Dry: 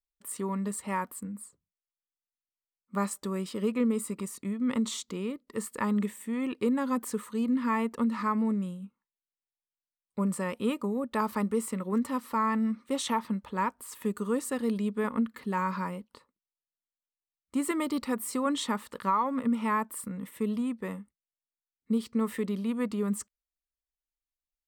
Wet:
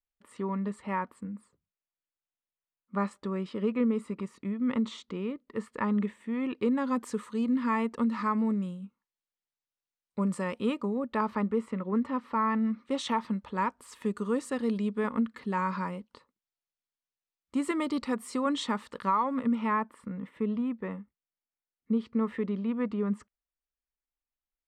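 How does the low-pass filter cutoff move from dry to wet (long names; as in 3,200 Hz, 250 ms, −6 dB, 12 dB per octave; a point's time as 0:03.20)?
0:06.22 2,900 Hz
0:07.10 6,300 Hz
0:10.54 6,300 Hz
0:11.57 2,500 Hz
0:12.17 2,500 Hz
0:13.22 6,000 Hz
0:19.30 6,000 Hz
0:19.92 2,400 Hz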